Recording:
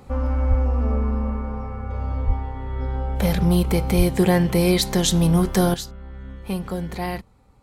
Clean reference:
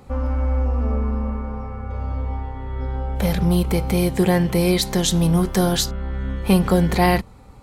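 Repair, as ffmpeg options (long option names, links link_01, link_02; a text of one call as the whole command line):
ffmpeg -i in.wav -filter_complex "[0:a]asplit=3[link_01][link_02][link_03];[link_01]afade=type=out:start_time=0.49:duration=0.02[link_04];[link_02]highpass=frequency=140:width=0.5412,highpass=frequency=140:width=1.3066,afade=type=in:start_time=0.49:duration=0.02,afade=type=out:start_time=0.61:duration=0.02[link_05];[link_03]afade=type=in:start_time=0.61:duration=0.02[link_06];[link_04][link_05][link_06]amix=inputs=3:normalize=0,asplit=3[link_07][link_08][link_09];[link_07]afade=type=out:start_time=2.26:duration=0.02[link_10];[link_08]highpass=frequency=140:width=0.5412,highpass=frequency=140:width=1.3066,afade=type=in:start_time=2.26:duration=0.02,afade=type=out:start_time=2.38:duration=0.02[link_11];[link_09]afade=type=in:start_time=2.38:duration=0.02[link_12];[link_10][link_11][link_12]amix=inputs=3:normalize=0,asplit=3[link_13][link_14][link_15];[link_13]afade=type=out:start_time=3.97:duration=0.02[link_16];[link_14]highpass=frequency=140:width=0.5412,highpass=frequency=140:width=1.3066,afade=type=in:start_time=3.97:duration=0.02,afade=type=out:start_time=4.09:duration=0.02[link_17];[link_15]afade=type=in:start_time=4.09:duration=0.02[link_18];[link_16][link_17][link_18]amix=inputs=3:normalize=0,asetnsamples=nb_out_samples=441:pad=0,asendcmd='5.74 volume volume 11dB',volume=0dB" out.wav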